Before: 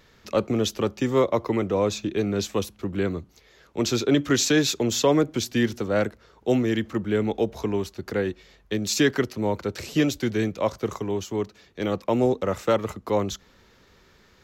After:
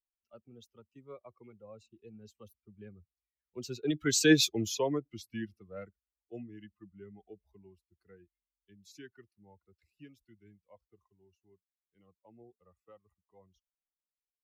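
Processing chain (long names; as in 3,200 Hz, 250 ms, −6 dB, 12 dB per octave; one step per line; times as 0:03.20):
spectral dynamics exaggerated over time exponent 2
source passing by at 0:04.36, 20 m/s, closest 3.2 metres
level +2 dB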